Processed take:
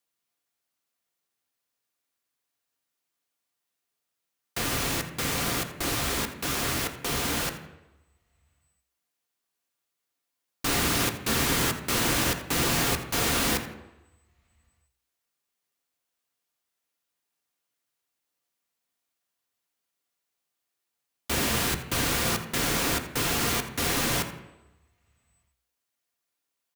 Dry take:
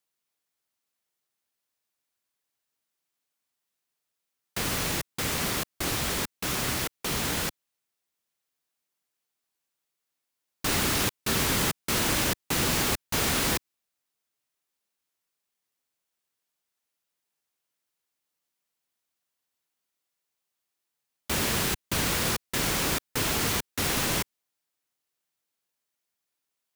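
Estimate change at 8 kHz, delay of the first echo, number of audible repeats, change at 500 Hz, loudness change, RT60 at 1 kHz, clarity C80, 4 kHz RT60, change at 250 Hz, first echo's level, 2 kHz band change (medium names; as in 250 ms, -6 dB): 0.0 dB, 83 ms, 1, +1.0 dB, +0.5 dB, 1.0 s, 11.0 dB, 0.85 s, +1.5 dB, -15.0 dB, +1.0 dB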